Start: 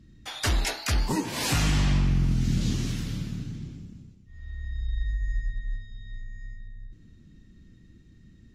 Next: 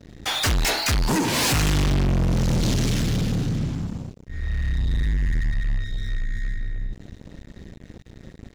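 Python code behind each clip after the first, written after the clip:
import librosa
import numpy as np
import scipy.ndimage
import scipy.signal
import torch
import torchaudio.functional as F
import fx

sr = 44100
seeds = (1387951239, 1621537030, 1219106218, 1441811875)

y = fx.leveller(x, sr, passes=5)
y = F.gain(torch.from_numpy(y), -4.0).numpy()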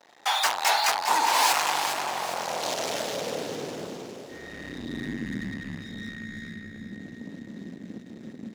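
y = fx.filter_sweep_highpass(x, sr, from_hz=840.0, to_hz=220.0, start_s=2.16, end_s=5.46, q=3.3)
y = fx.echo_alternate(y, sr, ms=203, hz=1100.0, feedback_pct=71, wet_db=-5.5)
y = F.gain(torch.from_numpy(y), -2.5).numpy()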